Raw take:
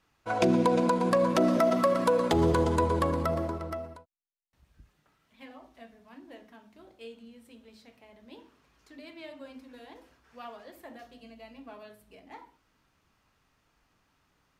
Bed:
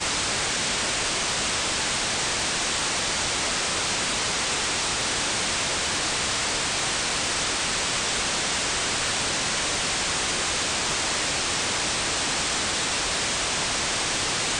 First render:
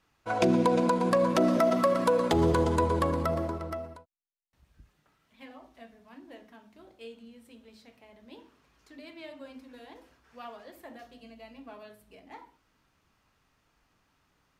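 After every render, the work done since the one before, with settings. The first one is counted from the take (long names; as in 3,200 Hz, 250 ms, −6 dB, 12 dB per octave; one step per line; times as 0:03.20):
no processing that can be heard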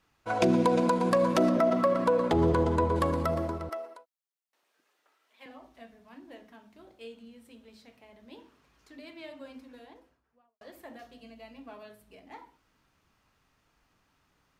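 0:01.49–0:02.96: high-shelf EQ 3,800 Hz −11.5 dB
0:03.69–0:05.46: high-pass filter 380 Hz 24 dB per octave
0:09.54–0:10.61: fade out and dull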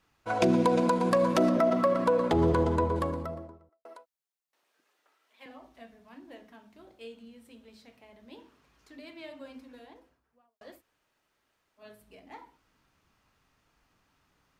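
0:02.60–0:03.85: fade out and dull
0:10.78–0:11.82: fill with room tone, crossfade 0.10 s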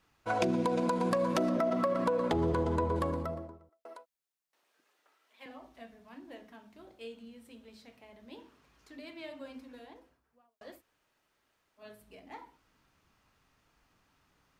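downward compressor, threshold −26 dBFS, peak gain reduction 7 dB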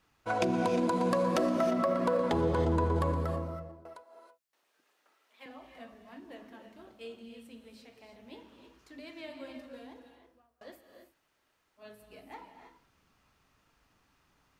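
reverb whose tail is shaped and stops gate 350 ms rising, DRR 6 dB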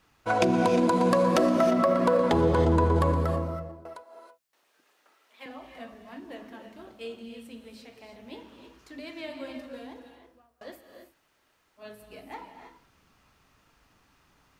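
level +6 dB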